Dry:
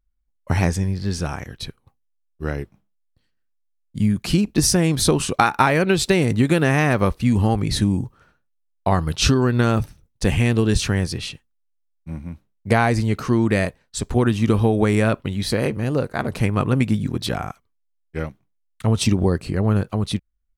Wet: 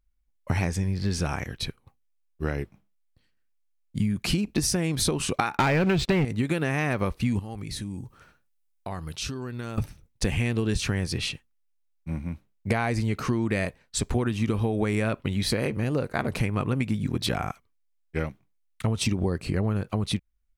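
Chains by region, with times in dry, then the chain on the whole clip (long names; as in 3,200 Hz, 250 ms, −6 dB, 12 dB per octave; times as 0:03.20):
0:05.57–0:06.25: low-pass filter 6,300 Hz + bass and treble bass +5 dB, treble −10 dB + leveller curve on the samples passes 3
0:07.39–0:09.78: high-shelf EQ 4,700 Hz +7.5 dB + downward compressor 2.5 to 1, threshold −39 dBFS
whole clip: parametric band 2,300 Hz +4 dB 0.47 octaves; downward compressor 6 to 1, threshold −22 dBFS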